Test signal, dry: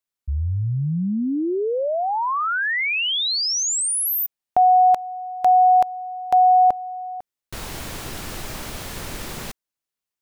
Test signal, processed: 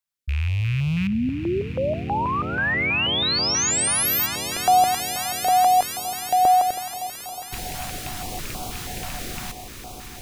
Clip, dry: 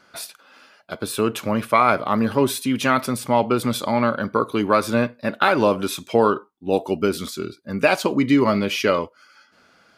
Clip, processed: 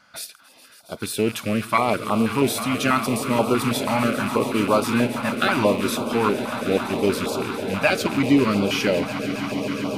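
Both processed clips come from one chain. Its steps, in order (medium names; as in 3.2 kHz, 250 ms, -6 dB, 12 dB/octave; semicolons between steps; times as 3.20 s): rattle on loud lows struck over -30 dBFS, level -21 dBFS; on a send: echo with a slow build-up 138 ms, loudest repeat 8, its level -16 dB; on the sum: step-sequenced notch 6.2 Hz 390–1800 Hz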